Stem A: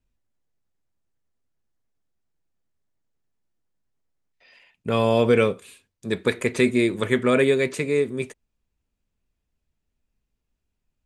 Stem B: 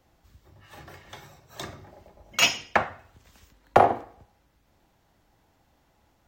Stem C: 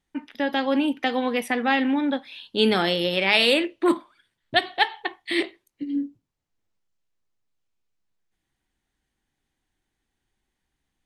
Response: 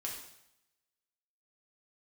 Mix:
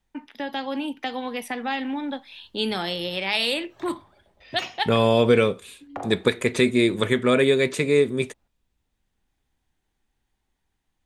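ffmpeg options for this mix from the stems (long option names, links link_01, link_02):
-filter_complex "[0:a]equalizer=frequency=3600:width=5.3:gain=6,dynaudnorm=framelen=240:gausssize=17:maxgain=16dB,volume=-1.5dB,asplit=2[link_01][link_02];[1:a]lowpass=frequency=2500:poles=1,alimiter=limit=-11dB:level=0:latency=1:release=423,adelay=2200,volume=-10dB[link_03];[2:a]equalizer=frequency=880:width_type=o:width=0.77:gain=5,acrossover=split=160|3000[link_04][link_05][link_06];[link_05]acompressor=threshold=-37dB:ratio=1.5[link_07];[link_04][link_07][link_06]amix=inputs=3:normalize=0,volume=-1.5dB[link_08];[link_02]apad=whole_len=487499[link_09];[link_08][link_09]sidechaincompress=threshold=-27dB:ratio=8:attack=16:release=1310[link_10];[link_01][link_03][link_10]amix=inputs=3:normalize=0,alimiter=limit=-7dB:level=0:latency=1:release=433"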